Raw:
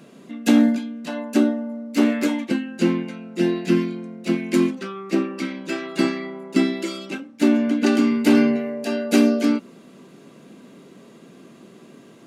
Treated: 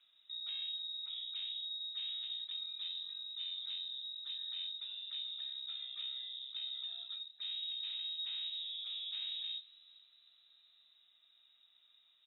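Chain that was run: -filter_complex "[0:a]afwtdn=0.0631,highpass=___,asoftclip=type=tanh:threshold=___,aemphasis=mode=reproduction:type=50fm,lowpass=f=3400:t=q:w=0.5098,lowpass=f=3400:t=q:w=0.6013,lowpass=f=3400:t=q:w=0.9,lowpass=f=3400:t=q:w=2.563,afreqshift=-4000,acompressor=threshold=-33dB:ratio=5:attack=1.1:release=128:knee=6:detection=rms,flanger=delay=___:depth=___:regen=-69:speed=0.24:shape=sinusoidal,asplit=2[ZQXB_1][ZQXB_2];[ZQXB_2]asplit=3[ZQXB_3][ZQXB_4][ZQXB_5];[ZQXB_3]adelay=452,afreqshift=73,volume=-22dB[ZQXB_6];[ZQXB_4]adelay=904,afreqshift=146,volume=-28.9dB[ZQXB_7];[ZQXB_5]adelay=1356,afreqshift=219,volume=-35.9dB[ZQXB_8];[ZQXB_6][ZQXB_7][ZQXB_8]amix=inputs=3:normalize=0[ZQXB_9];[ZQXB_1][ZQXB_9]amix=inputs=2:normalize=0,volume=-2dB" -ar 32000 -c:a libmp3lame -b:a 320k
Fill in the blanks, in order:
50, -22.5dB, 6.1, 7.4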